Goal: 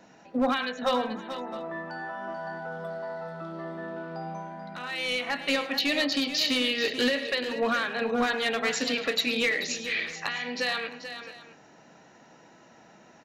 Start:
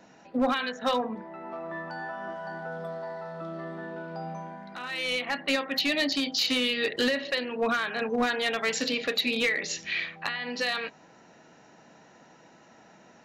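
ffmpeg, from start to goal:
-af "aecho=1:1:106|436|659:0.168|0.299|0.112"

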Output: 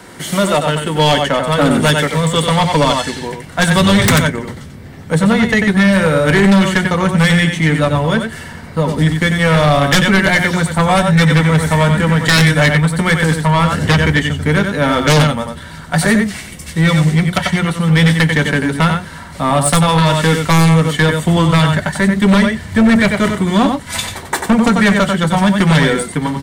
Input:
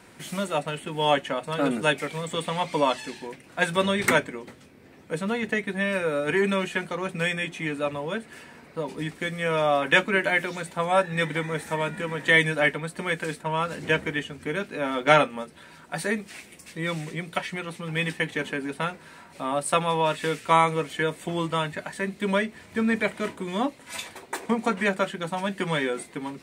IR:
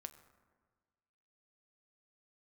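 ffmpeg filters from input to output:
-filter_complex "[0:a]bandreject=f=2500:w=6.5,aecho=1:1:92:0.473,aeval=exprs='0.794*(cos(1*acos(clip(val(0)/0.794,-1,1)))-cos(1*PI/2))+0.0282*(cos(7*acos(clip(val(0)/0.794,-1,1)))-cos(7*PI/2))':c=same,asubboost=boost=6.5:cutoff=130,asplit=2[s0][s1];[s1]aeval=exprs='sgn(val(0))*max(abs(val(0))-0.0178,0)':c=same,volume=0.335[s2];[s0][s2]amix=inputs=2:normalize=0,acrossover=split=260|3000[s3][s4][s5];[s4]acompressor=threshold=0.0562:ratio=6[s6];[s3][s6][s5]amix=inputs=3:normalize=0,aeval=exprs='0.891*sin(PI/2*7.94*val(0)/0.891)':c=same,volume=0.562"

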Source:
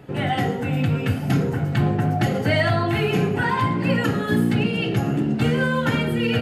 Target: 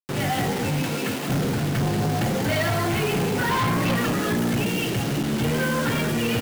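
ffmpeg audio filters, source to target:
-filter_complex "[0:a]asettb=1/sr,asplit=3[s0][s1][s2];[s0]atrim=end=3.494[s3];[s1]atrim=start=3.49:end=3.96,asetpts=PTS-STARTPTS,afade=t=in:d=0.004:c=qsin,afade=t=out:st=0.466:d=0.004:c=qsin,acontrast=39[s4];[s2]atrim=start=3.956[s5];[s3][s4]acrossfade=d=0.004:c1=hsin:c2=qsin[s6];[s6][s5]acrossfade=d=0.004:c1=qsin:c2=hsin,asettb=1/sr,asplit=3[s7][s8][s9];[s7]atrim=end=4.694[s10];[s8]atrim=start=4.69:end=5.33,asetpts=PTS-STARTPTS,afade=t=in:d=0.004:c=qsin,afade=t=out:st=0.636:d=0.004:c=qsin,equalizer=f=390:w=0.41:g=-3.5[s11];[s9]atrim=start=5.326[s12];[s10][s11]acrossfade=d=0.004:c1=hsin:c2=qsin[s13];[s13][s12]acrossfade=d=0.004:c1=qsin:c2=hsin,asplit=8[s14][s15][s16][s17][s18][s19][s20][s21];[s15]adelay=185,afreqshift=65,volume=0.282[s22];[s16]adelay=370,afreqshift=130,volume=0.166[s23];[s17]adelay=555,afreqshift=195,volume=0.0977[s24];[s18]adelay=740,afreqshift=260,volume=0.0582[s25];[s19]adelay=925,afreqshift=325,volume=0.0343[s26];[s20]adelay=1110,afreqshift=390,volume=0.0202[s27];[s21]adelay=1295,afreqshift=455,volume=0.0119[s28];[s14][s22][s23][s24][s25][s26][s27][s28]amix=inputs=8:normalize=0,acrusher=bits=4:mix=0:aa=0.000001,asettb=1/sr,asplit=3[s29][s30][s31];[s29]atrim=end=0.824[s32];[s30]atrim=start=0.82:end=1.3,asetpts=PTS-STARTPTS,afade=t=in:d=0.004:c=qsin,afade=t=out:st=0.476:d=0.004:c=qsin,highpass=250[s33];[s31]atrim=start=1.296[s34];[s32][s33]acrossfade=d=0.004:c1=hsin:c2=qsin[s35];[s35][s34]acrossfade=d=0.004:c1=qsin:c2=hsin,asoftclip=type=hard:threshold=0.1"

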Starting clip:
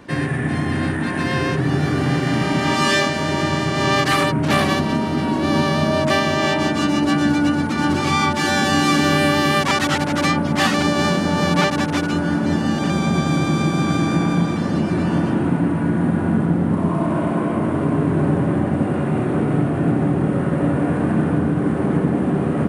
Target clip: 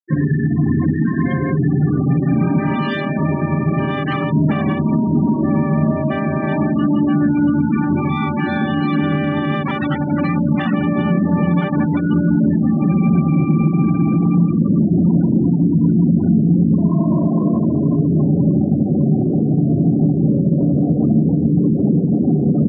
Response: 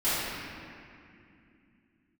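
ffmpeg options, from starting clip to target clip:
-filter_complex "[0:a]acrossover=split=4500[s0][s1];[s1]acompressor=threshold=0.01:ratio=4:attack=1:release=60[s2];[s0][s2]amix=inputs=2:normalize=0,asettb=1/sr,asplit=3[s3][s4][s5];[s3]atrim=end=5.034[s6];[s4]atrim=start=5.03:end=7.6,asetpts=PTS-STARTPTS,afade=t=in:d=0.004:c=qsin,afade=t=out:st=2.566:d=0.004:c=qsin,aemphasis=mode=reproduction:type=50fm[s7];[s5]atrim=start=7.596[s8];[s6][s7]acrossfade=d=0.004:c1=hsin:c2=qsin[s9];[s9][s8]acrossfade=d=0.004:c1=qsin:c2=hsin,afftfilt=real='re*gte(hypot(re,im),0.178)':imag='im*gte(hypot(re,im),0.178)':win_size=1024:overlap=0.75,bandreject=f=62.27:t=h:w=4,bandreject=f=124.54:t=h:w=4,bandreject=f=186.81:t=h:w=4,bandreject=f=249.08:t=h:w=4,bandreject=f=311.35:t=h:w=4,bandreject=f=373.62:t=h:w=4,bandreject=f=435.89:t=h:w=4,bandreject=f=498.16:t=h:w=4,bandreject=f=560.43:t=h:w=4,bandreject=f=622.7:t=h:w=4,bandreject=f=684.97:t=h:w=4,alimiter=limit=0.2:level=0:latency=1:release=155,asoftclip=type=tanh:threshold=0.422,equalizer=f=190:t=o:w=1.4:g=10.5"

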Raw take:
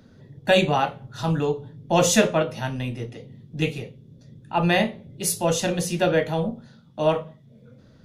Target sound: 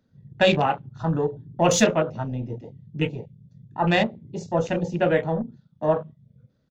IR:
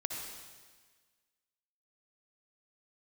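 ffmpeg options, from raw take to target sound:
-af "aresample=16000,aresample=44100,afwtdn=0.0251,atempo=1.2"

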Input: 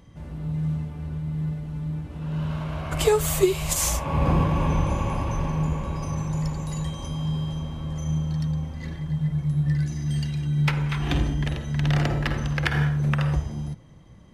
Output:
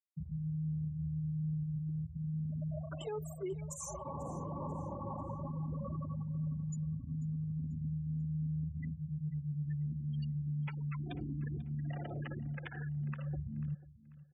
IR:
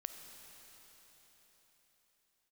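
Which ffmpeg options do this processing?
-af "agate=range=0.0224:threshold=0.01:ratio=3:detection=peak,afftfilt=real='re*gte(hypot(re,im),0.0891)':imag='im*gte(hypot(re,im),0.0891)':win_size=1024:overlap=0.75,highpass=120,equalizer=f=670:w=1.5:g=5.5,areverse,acompressor=threshold=0.02:ratio=12,areverse,alimiter=level_in=3.16:limit=0.0631:level=0:latency=1:release=360,volume=0.316,aecho=1:1:491|982|1473:0.119|0.0368|0.0114,volume=1.26"

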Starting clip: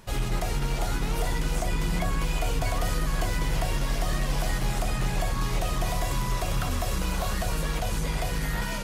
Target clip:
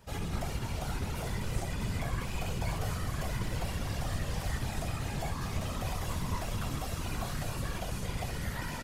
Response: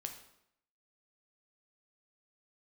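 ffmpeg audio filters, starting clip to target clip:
-af "flanger=delay=6.5:depth=7.7:regen=59:speed=0.31:shape=triangular,aecho=1:1:55.39|233.2:0.316|0.316,afftfilt=real='hypot(re,im)*cos(2*PI*random(0))':imag='hypot(re,im)*sin(2*PI*random(1))':win_size=512:overlap=0.75,volume=1.26"

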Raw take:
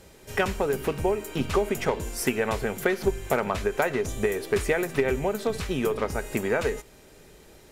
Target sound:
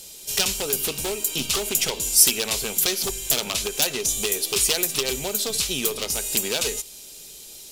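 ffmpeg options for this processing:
-af "equalizer=f=86:t=o:w=0.67:g=-7.5,aeval=exprs='0.112*(abs(mod(val(0)/0.112+3,4)-2)-1)':c=same,aexciter=amount=10.4:drive=3:freq=2700,volume=0.668"

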